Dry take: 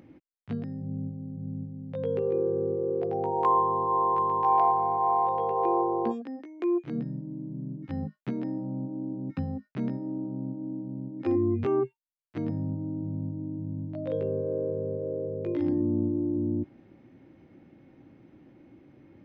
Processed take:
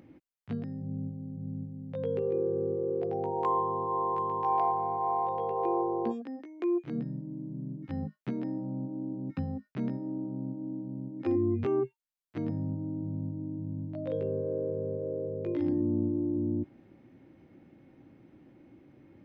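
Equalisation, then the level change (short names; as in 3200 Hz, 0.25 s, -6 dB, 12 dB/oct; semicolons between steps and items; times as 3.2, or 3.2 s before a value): dynamic EQ 1100 Hz, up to -4 dB, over -35 dBFS, Q 1; -2.0 dB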